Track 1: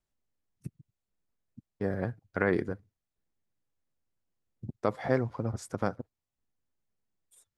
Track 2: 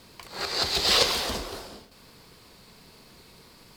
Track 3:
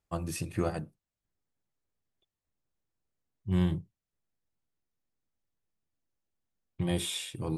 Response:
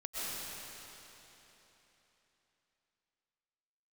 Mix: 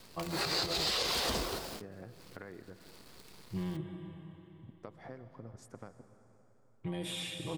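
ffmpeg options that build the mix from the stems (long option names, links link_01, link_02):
-filter_complex "[0:a]acompressor=threshold=-31dB:ratio=12,volume=-13dB,asplit=3[link_01][link_02][link_03];[link_02]volume=-13.5dB[link_04];[1:a]acrusher=bits=8:dc=4:mix=0:aa=0.000001,volume=-0.5dB[link_05];[2:a]bass=frequency=250:gain=-6,treble=frequency=4000:gain=-9,aecho=1:1:6.2:0.65,alimiter=level_in=4.5dB:limit=-24dB:level=0:latency=1:release=95,volume=-4.5dB,adelay=50,volume=-3dB,asplit=2[link_06][link_07];[link_07]volume=-5.5dB[link_08];[link_03]apad=whole_len=166082[link_09];[link_05][link_09]sidechaincompress=threshold=-57dB:ratio=5:attack=9.1:release=146[link_10];[3:a]atrim=start_sample=2205[link_11];[link_04][link_08]amix=inputs=2:normalize=0[link_12];[link_12][link_11]afir=irnorm=-1:irlink=0[link_13];[link_01][link_10][link_06][link_13]amix=inputs=4:normalize=0,alimiter=limit=-22.5dB:level=0:latency=1:release=96"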